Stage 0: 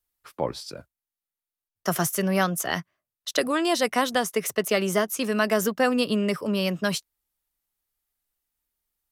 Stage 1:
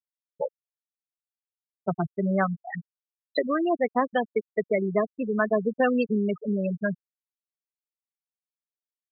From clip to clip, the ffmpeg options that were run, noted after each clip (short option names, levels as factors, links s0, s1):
-af "aeval=exprs='0.376*(cos(1*acos(clip(val(0)/0.376,-1,1)))-cos(1*PI/2))+0.015*(cos(4*acos(clip(val(0)/0.376,-1,1)))-cos(4*PI/2))':c=same,afftfilt=real='re*gte(hypot(re,im),0.224)':imag='im*gte(hypot(re,im),0.224)':win_size=1024:overlap=0.75"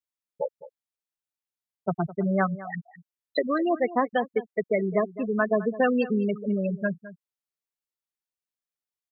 -filter_complex "[0:a]asplit=2[s0][s1];[s1]adelay=209.9,volume=0.158,highshelf=f=4000:g=-4.72[s2];[s0][s2]amix=inputs=2:normalize=0"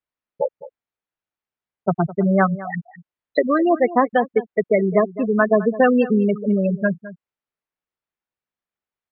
-af "lowpass=2300,volume=2.37"